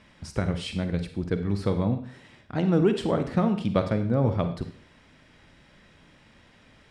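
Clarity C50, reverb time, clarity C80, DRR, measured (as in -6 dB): 10.0 dB, 0.45 s, 13.5 dB, 8.0 dB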